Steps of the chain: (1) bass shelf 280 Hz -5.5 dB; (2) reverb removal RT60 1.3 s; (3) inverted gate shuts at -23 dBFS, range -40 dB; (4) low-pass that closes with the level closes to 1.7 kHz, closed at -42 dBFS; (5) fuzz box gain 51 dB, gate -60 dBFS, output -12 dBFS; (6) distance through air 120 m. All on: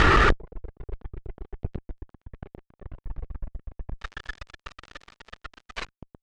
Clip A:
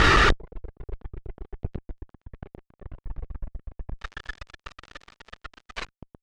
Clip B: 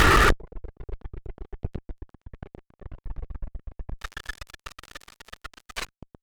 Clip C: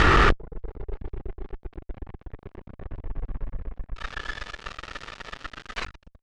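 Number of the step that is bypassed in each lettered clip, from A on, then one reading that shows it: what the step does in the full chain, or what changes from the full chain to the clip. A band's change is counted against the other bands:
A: 4, 8 kHz band +6.0 dB; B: 6, 8 kHz band +9.5 dB; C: 2, momentary loudness spread change -4 LU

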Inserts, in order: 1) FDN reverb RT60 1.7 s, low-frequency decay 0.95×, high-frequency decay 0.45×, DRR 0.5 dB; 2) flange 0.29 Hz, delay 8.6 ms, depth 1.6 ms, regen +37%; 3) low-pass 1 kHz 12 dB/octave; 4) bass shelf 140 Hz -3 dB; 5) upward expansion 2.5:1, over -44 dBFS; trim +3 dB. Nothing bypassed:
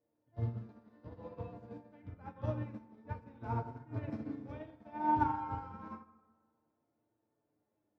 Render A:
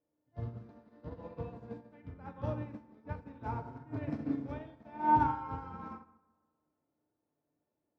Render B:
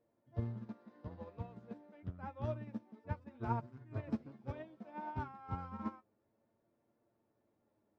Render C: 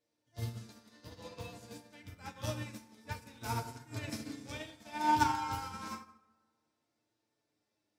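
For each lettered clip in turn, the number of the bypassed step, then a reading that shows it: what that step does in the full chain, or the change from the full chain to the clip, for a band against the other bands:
2, 125 Hz band -3.5 dB; 1, momentary loudness spread change -9 LU; 3, 2 kHz band +9.5 dB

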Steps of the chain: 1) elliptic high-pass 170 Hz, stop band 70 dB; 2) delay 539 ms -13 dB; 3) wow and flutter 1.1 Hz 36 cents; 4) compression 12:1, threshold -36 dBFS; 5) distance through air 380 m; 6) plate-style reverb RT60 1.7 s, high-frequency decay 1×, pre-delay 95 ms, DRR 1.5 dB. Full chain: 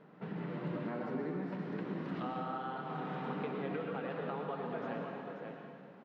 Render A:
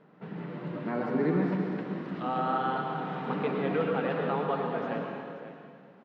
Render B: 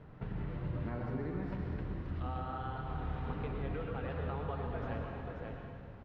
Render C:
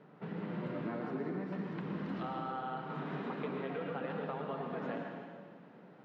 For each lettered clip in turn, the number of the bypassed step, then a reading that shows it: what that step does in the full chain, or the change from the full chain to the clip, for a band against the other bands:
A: 4, mean gain reduction 5.5 dB; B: 1, 125 Hz band +8.5 dB; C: 2, momentary loudness spread change +2 LU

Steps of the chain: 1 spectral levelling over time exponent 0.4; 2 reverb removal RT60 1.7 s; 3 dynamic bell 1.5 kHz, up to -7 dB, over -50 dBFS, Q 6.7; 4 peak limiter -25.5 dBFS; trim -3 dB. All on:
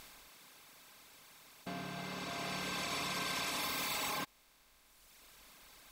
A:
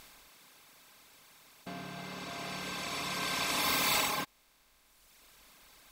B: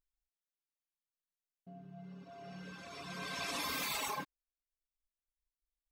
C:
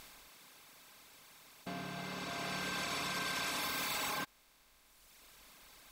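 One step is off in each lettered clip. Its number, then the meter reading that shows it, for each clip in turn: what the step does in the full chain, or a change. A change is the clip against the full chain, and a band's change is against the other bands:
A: 4, crest factor change +6.5 dB; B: 1, crest factor change +3.0 dB; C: 3, 2 kHz band +1.5 dB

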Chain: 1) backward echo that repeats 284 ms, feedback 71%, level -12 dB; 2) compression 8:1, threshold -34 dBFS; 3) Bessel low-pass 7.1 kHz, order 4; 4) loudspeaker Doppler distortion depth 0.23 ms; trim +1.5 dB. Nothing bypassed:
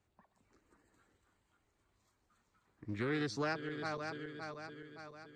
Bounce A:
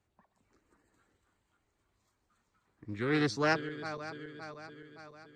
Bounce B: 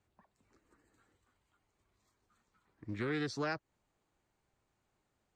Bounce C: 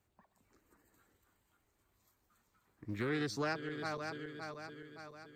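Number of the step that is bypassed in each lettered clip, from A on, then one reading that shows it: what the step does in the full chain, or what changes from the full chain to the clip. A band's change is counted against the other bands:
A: 2, mean gain reduction 1.5 dB; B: 1, 1 kHz band -1.5 dB; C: 3, 8 kHz band +2.5 dB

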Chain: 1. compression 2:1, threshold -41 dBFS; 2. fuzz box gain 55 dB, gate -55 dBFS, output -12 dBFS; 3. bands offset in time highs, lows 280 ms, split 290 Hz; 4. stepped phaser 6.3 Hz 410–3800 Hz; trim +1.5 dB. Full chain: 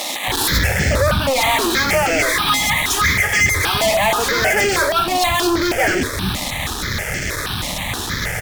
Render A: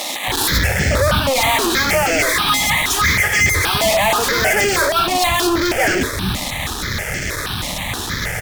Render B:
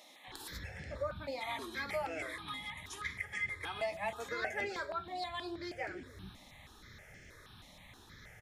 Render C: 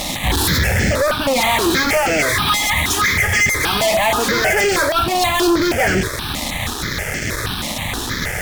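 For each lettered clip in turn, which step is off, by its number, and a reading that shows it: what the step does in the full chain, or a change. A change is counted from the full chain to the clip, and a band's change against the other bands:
1, mean gain reduction 4.5 dB; 2, distortion -2 dB; 3, 250 Hz band +2.5 dB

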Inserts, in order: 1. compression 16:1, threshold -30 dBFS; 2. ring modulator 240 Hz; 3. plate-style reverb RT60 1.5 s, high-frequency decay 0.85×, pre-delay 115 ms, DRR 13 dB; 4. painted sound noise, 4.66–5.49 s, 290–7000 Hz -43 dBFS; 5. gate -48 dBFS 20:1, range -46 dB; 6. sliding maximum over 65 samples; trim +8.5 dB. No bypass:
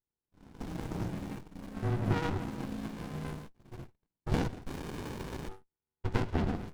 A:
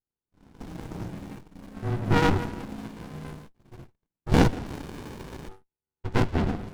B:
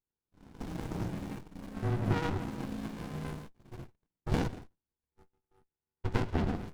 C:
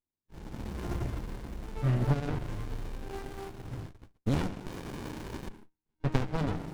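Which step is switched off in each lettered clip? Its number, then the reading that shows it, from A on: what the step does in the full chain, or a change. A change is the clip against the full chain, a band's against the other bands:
1, momentary loudness spread change +7 LU; 4, momentary loudness spread change +3 LU; 2, momentary loudness spread change -1 LU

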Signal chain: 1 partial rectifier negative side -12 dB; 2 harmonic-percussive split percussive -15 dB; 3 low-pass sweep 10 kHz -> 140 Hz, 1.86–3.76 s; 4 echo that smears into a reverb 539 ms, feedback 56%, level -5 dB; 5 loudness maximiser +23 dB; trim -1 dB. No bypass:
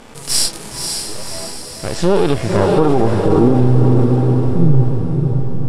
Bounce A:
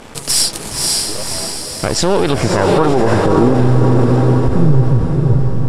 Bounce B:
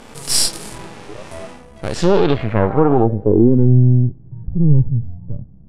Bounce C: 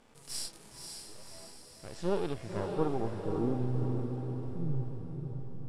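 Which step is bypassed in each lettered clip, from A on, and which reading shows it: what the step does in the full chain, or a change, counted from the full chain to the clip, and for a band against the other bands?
2, 2 kHz band +3.5 dB; 4, momentary loudness spread change +9 LU; 5, crest factor change +6.5 dB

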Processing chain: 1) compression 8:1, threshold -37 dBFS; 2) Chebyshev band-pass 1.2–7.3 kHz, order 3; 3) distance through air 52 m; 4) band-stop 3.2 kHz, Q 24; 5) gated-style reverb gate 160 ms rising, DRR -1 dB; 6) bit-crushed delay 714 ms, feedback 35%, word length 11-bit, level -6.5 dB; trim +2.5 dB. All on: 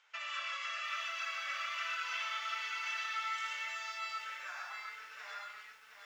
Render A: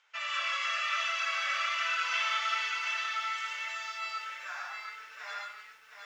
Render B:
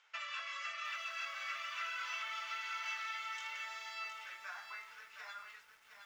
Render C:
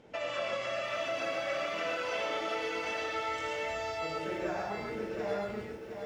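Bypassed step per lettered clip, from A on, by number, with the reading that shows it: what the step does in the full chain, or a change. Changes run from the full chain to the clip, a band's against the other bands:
1, mean gain reduction 4.5 dB; 5, loudness change -3.5 LU; 2, 500 Hz band +25.5 dB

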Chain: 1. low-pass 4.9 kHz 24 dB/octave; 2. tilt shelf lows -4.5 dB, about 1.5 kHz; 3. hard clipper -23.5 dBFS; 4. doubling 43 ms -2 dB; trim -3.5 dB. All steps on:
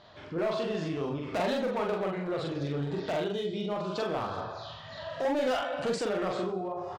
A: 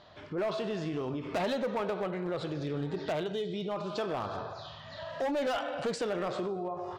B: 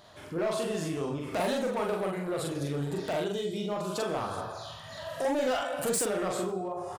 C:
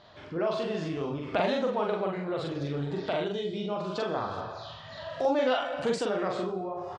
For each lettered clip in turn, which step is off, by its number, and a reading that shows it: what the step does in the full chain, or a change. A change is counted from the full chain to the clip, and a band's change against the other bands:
4, crest factor change -3.0 dB; 1, 8 kHz band +13.5 dB; 3, distortion -13 dB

